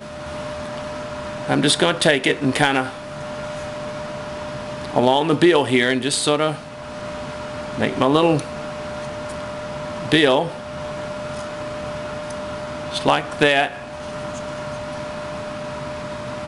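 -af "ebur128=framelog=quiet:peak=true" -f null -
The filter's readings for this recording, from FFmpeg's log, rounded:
Integrated loudness:
  I:         -21.8 LUFS
  Threshold: -31.9 LUFS
Loudness range:
  LRA:         3.7 LU
  Threshold: -41.6 LUFS
  LRA low:   -23.4 LUFS
  LRA high:  -19.6 LUFS
True peak:
  Peak:       -2.8 dBFS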